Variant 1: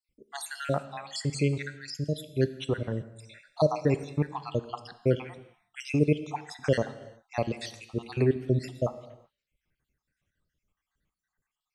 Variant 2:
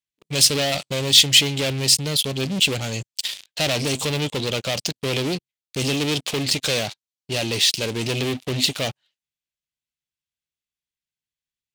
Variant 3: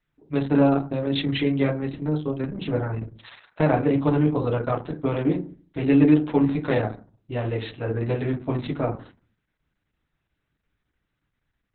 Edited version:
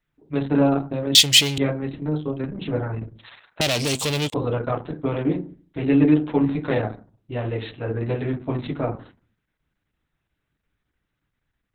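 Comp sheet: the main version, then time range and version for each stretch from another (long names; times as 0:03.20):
3
0:01.15–0:01.58: punch in from 2
0:03.61–0:04.34: punch in from 2
not used: 1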